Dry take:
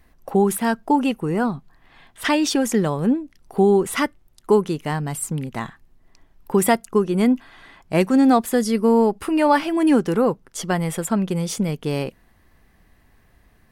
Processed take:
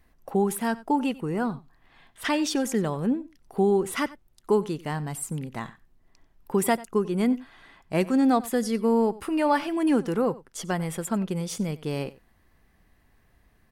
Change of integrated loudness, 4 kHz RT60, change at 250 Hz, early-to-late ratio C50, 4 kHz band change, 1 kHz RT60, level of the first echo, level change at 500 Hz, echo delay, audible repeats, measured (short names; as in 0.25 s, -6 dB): -6.0 dB, none, -6.0 dB, none, -6.0 dB, none, -19.5 dB, -6.0 dB, 92 ms, 1